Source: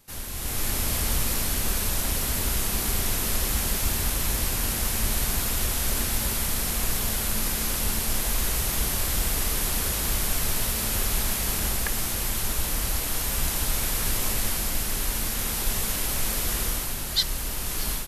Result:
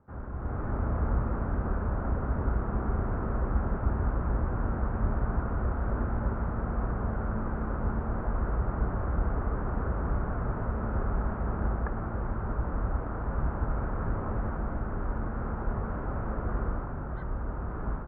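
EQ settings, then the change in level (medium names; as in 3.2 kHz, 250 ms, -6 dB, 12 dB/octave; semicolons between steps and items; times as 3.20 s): high-pass 45 Hz; elliptic low-pass 1.4 kHz, stop band 80 dB; bass shelf 160 Hz +5 dB; 0.0 dB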